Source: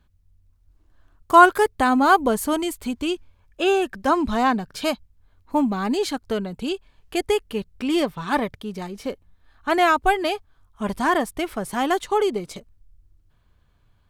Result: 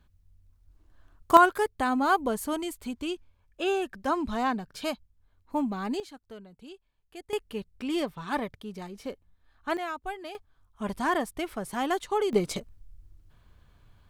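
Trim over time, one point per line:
-1 dB
from 1.37 s -8 dB
from 6.00 s -20 dB
from 7.33 s -8 dB
from 9.77 s -17 dB
from 10.35 s -6.5 dB
from 12.33 s +3.5 dB

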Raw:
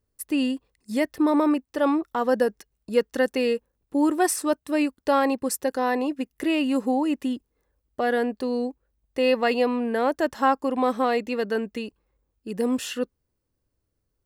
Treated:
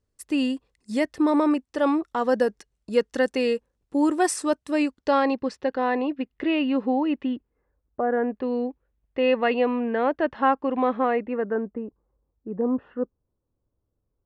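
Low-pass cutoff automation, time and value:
low-pass 24 dB/octave
4.71 s 9.2 kHz
5.71 s 3.6 kHz
7.15 s 3.6 kHz
8.06 s 1.3 kHz
8.48 s 3.1 kHz
10.85 s 3.1 kHz
11.76 s 1.2 kHz

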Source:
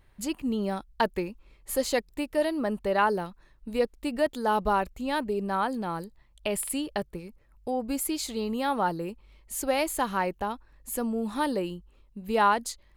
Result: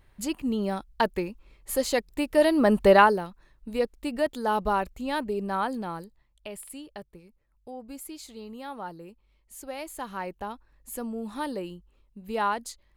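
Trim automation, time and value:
1.99 s +1 dB
2.90 s +11 dB
3.21 s -0.5 dB
5.76 s -0.5 dB
6.56 s -11 dB
9.75 s -11 dB
10.45 s -4.5 dB

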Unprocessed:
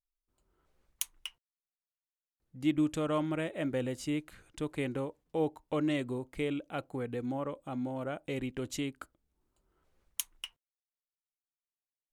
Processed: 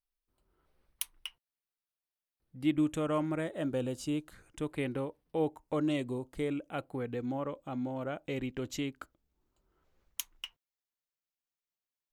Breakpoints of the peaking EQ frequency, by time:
peaking EQ -14 dB 0.29 oct
2.59 s 7 kHz
3.71 s 2 kHz
4.22 s 2 kHz
4.80 s 7 kHz
5.37 s 7 kHz
6.06 s 1.3 kHz
7.09 s 9.4 kHz

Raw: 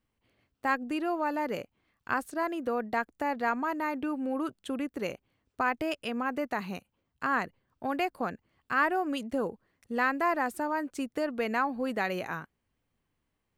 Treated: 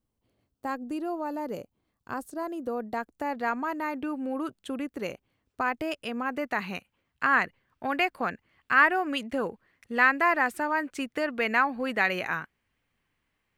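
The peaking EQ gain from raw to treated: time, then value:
peaking EQ 2.1 kHz 1.7 oct
2.64 s -11 dB
3.46 s +0.5 dB
6.19 s +0.5 dB
6.71 s +9.5 dB

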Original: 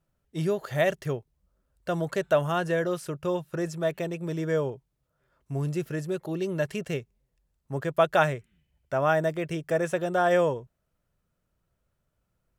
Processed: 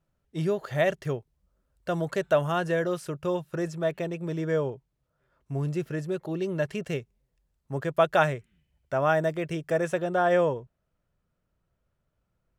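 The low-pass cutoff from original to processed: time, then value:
low-pass 6 dB/octave
5.7 kHz
from 1.05 s 9.9 kHz
from 3.68 s 4.8 kHz
from 6.84 s 9.3 kHz
from 10.00 s 3.5 kHz

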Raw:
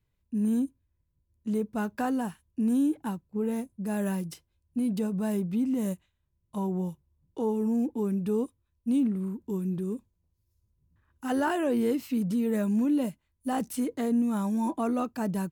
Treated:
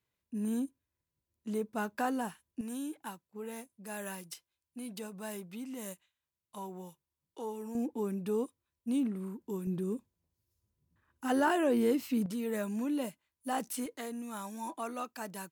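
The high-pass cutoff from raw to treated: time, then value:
high-pass 6 dB/octave
470 Hz
from 2.61 s 1.4 kHz
from 7.75 s 450 Hz
from 9.67 s 220 Hz
from 12.26 s 650 Hz
from 13.86 s 1.5 kHz

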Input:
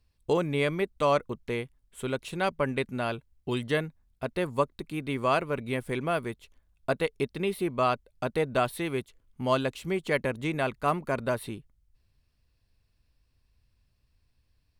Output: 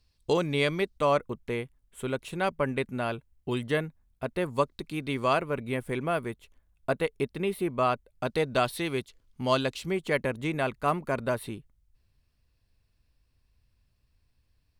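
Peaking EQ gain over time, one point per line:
peaking EQ 4.7 kHz 1.2 oct
+8.5 dB
from 0.98 s -3.5 dB
from 4.55 s +5 dB
from 5.33 s -4 dB
from 8.25 s +7 dB
from 9.86 s -1 dB

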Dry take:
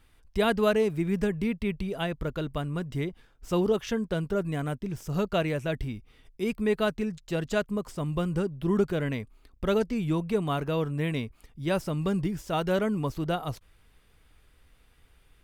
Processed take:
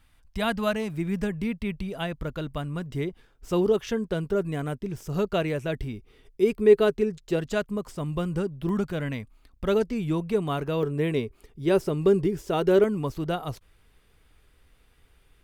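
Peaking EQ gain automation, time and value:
peaking EQ 400 Hz 0.45 oct
-11.5 dB
from 0.94 s -3.5 dB
from 2.86 s +4.5 dB
from 5.93 s +12.5 dB
from 7.39 s +1 dB
from 8.69 s -6 dB
from 9.67 s +3.5 dB
from 10.83 s +14.5 dB
from 12.84 s +3 dB

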